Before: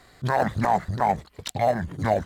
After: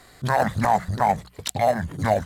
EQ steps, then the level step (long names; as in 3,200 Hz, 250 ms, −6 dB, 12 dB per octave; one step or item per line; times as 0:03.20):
mains-hum notches 60/120/180 Hz
dynamic equaliser 360 Hz, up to −6 dB, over −39 dBFS, Q 2.1
parametric band 11,000 Hz +6.5 dB 1.2 octaves
+2.5 dB